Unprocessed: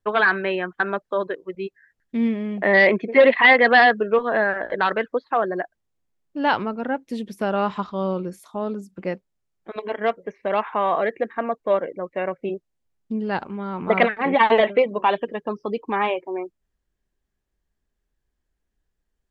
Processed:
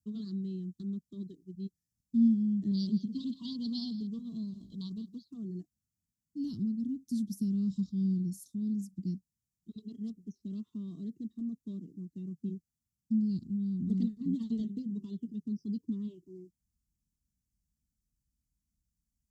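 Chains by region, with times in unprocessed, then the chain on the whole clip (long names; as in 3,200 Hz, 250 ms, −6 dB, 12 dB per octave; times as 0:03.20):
0:02.71–0:05.26: drawn EQ curve 180 Hz 0 dB, 340 Hz −8 dB, 1,100 Hz +9 dB, 1,700 Hz −29 dB, 3,200 Hz +9 dB, 6,300 Hz +2 dB + single-tap delay 165 ms −16.5 dB
whole clip: high-pass filter 59 Hz; dynamic equaliser 3,200 Hz, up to −7 dB, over −34 dBFS, Q 0.88; inverse Chebyshev band-stop filter 510–2,500 Hz, stop band 50 dB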